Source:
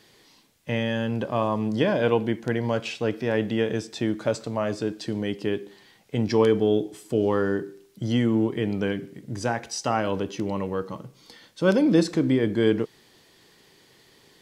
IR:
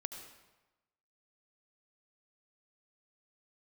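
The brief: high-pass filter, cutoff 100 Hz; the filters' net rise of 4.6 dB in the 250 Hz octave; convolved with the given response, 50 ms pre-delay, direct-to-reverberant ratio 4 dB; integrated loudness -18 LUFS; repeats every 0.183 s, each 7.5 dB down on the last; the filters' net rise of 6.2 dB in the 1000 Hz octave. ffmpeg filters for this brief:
-filter_complex "[0:a]highpass=100,equalizer=f=250:t=o:g=5.5,equalizer=f=1k:t=o:g=7.5,aecho=1:1:183|366|549|732|915:0.422|0.177|0.0744|0.0312|0.0131,asplit=2[a][b];[1:a]atrim=start_sample=2205,adelay=50[c];[b][c]afir=irnorm=-1:irlink=0,volume=-2.5dB[d];[a][d]amix=inputs=2:normalize=0,volume=2dB"

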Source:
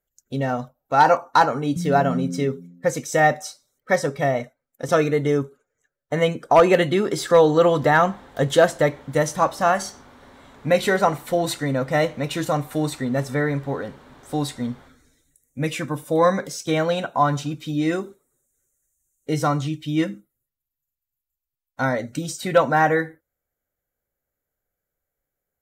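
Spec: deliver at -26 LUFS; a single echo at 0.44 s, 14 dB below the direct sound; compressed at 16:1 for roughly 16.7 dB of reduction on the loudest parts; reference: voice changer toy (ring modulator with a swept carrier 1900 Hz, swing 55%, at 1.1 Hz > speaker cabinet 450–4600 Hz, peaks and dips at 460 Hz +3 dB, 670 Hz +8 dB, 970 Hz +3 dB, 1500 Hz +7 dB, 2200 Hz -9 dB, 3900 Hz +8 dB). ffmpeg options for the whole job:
-af "acompressor=threshold=-26dB:ratio=16,aecho=1:1:440:0.2,aeval=exprs='val(0)*sin(2*PI*1900*n/s+1900*0.55/1.1*sin(2*PI*1.1*n/s))':c=same,highpass=450,equalizer=f=460:t=q:w=4:g=3,equalizer=f=670:t=q:w=4:g=8,equalizer=f=970:t=q:w=4:g=3,equalizer=f=1.5k:t=q:w=4:g=7,equalizer=f=2.2k:t=q:w=4:g=-9,equalizer=f=3.9k:t=q:w=4:g=8,lowpass=f=4.6k:w=0.5412,lowpass=f=4.6k:w=1.3066,volume=5dB"

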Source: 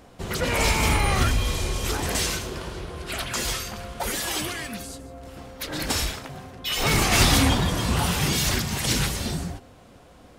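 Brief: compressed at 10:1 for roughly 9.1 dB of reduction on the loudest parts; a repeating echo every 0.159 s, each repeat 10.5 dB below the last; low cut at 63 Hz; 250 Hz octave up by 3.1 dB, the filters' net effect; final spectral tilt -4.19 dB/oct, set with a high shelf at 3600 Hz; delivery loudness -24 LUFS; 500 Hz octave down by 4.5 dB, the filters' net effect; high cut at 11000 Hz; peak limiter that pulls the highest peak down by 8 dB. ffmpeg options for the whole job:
-af "highpass=63,lowpass=11k,equalizer=f=250:t=o:g=6,equalizer=f=500:t=o:g=-8,highshelf=f=3.6k:g=-7,acompressor=threshold=-24dB:ratio=10,alimiter=limit=-22.5dB:level=0:latency=1,aecho=1:1:159|318|477:0.299|0.0896|0.0269,volume=8dB"

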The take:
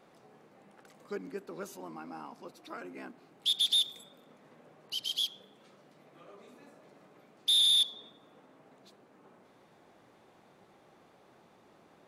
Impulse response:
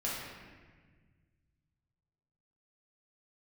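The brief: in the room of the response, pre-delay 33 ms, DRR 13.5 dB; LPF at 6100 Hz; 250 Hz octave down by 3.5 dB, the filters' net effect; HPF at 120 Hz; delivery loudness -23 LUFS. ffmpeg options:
-filter_complex "[0:a]highpass=120,lowpass=6.1k,equalizer=f=250:t=o:g=-4.5,asplit=2[a][b];[1:a]atrim=start_sample=2205,adelay=33[c];[b][c]afir=irnorm=-1:irlink=0,volume=-18.5dB[d];[a][d]amix=inputs=2:normalize=0,volume=5.5dB"

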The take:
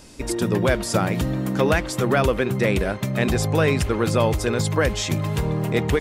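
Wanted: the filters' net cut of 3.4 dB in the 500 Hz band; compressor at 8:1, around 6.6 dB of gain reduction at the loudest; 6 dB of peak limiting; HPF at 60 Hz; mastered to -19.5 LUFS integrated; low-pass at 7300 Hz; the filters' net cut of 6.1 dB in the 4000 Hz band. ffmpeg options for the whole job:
-af "highpass=60,lowpass=7.3k,equalizer=f=500:t=o:g=-4,equalizer=f=4k:t=o:g=-7.5,acompressor=threshold=-23dB:ratio=8,volume=10dB,alimiter=limit=-9dB:level=0:latency=1"

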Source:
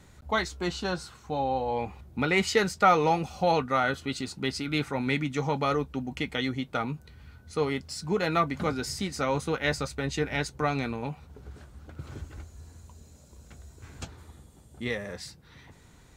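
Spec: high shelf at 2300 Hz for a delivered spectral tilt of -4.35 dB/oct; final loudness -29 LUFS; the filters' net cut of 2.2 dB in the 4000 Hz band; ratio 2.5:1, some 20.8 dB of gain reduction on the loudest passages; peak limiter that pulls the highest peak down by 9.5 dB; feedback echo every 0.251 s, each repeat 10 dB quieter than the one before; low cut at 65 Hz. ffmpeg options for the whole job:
-af "highpass=65,highshelf=f=2.3k:g=5.5,equalizer=f=4k:t=o:g=-8,acompressor=threshold=-48dB:ratio=2.5,alimiter=level_in=13dB:limit=-24dB:level=0:latency=1,volume=-13dB,aecho=1:1:251|502|753|1004:0.316|0.101|0.0324|0.0104,volume=19dB"

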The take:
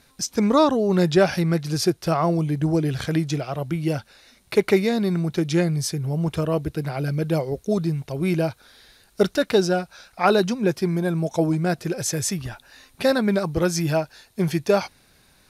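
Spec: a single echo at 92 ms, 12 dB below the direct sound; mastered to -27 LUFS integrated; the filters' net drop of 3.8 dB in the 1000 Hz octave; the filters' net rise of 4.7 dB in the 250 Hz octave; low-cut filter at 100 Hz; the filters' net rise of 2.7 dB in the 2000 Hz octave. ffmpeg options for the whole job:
-af "highpass=100,equalizer=f=250:t=o:g=8,equalizer=f=1k:t=o:g=-8,equalizer=f=2k:t=o:g=6.5,aecho=1:1:92:0.251,volume=-7.5dB"

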